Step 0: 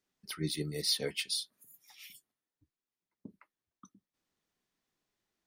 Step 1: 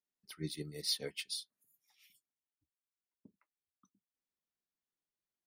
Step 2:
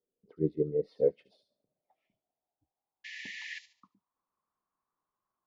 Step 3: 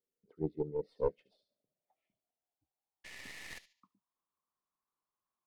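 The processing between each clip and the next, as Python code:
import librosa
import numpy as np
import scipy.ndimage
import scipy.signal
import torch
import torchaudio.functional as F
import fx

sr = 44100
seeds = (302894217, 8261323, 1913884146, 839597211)

y1 = fx.upward_expand(x, sr, threshold_db=-51.0, expansion=1.5)
y1 = F.gain(torch.from_numpy(y1), -3.5).numpy()
y2 = fx.spec_paint(y1, sr, seeds[0], shape='noise', start_s=3.04, length_s=0.55, low_hz=1700.0, high_hz=7400.0, level_db=-29.0)
y2 = fx.echo_wet_highpass(y2, sr, ms=72, feedback_pct=32, hz=5400.0, wet_db=-3.0)
y2 = fx.filter_sweep_lowpass(y2, sr, from_hz=470.0, to_hz=1100.0, start_s=0.6, end_s=4.31, q=7.0)
y2 = F.gain(torch.from_numpy(y2), 6.0).numpy()
y3 = fx.tracing_dist(y2, sr, depth_ms=0.18)
y3 = F.gain(torch.from_numpy(y3), -6.5).numpy()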